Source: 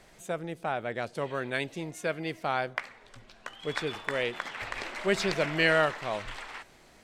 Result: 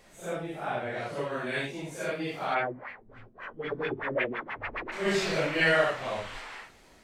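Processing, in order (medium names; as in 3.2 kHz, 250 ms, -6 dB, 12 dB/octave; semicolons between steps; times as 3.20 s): phase randomisation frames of 200 ms; 2.54–4.91 s: LFO low-pass sine 2.8 Hz -> 8.5 Hz 230–2400 Hz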